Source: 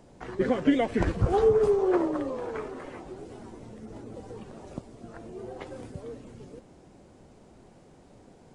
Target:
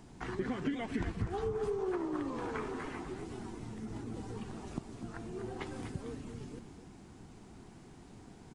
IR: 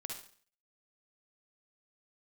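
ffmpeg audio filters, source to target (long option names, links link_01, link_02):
-af "equalizer=frequency=550:width=2.5:gain=-14,acompressor=threshold=-35dB:ratio=6,aecho=1:1:248:0.335,volume=2dB"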